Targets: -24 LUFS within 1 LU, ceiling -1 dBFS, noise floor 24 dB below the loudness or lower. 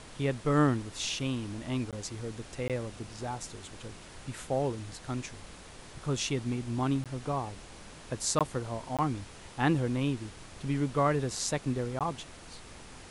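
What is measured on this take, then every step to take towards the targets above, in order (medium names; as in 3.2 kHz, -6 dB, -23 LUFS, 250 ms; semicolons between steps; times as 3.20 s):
dropouts 6; longest dropout 17 ms; noise floor -49 dBFS; noise floor target -57 dBFS; loudness -32.5 LUFS; peak level -12.5 dBFS; loudness target -24.0 LUFS
-> interpolate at 1.91/2.68/7.04/8.39/8.97/11.99 s, 17 ms; noise print and reduce 8 dB; trim +8.5 dB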